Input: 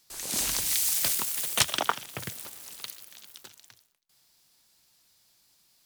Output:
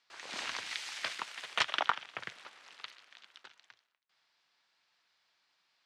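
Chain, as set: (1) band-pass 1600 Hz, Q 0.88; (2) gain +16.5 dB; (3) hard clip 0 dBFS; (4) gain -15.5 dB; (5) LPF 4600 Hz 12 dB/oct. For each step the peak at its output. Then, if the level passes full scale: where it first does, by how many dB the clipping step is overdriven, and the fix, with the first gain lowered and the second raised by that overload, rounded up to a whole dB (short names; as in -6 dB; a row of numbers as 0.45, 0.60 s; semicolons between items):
-8.5, +8.0, 0.0, -15.5, -14.5 dBFS; step 2, 8.0 dB; step 2 +8.5 dB, step 4 -7.5 dB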